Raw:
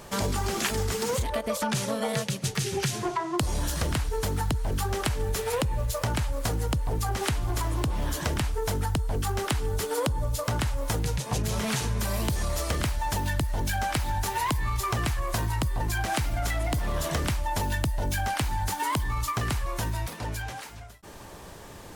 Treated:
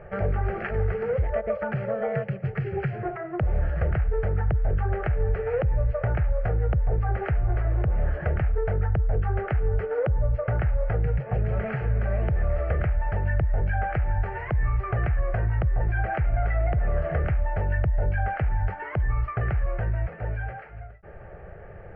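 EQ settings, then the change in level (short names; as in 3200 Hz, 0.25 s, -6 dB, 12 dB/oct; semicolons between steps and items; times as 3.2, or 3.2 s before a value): Gaussian blur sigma 2.8 samples; air absorption 480 m; fixed phaser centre 1000 Hz, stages 6; +6.0 dB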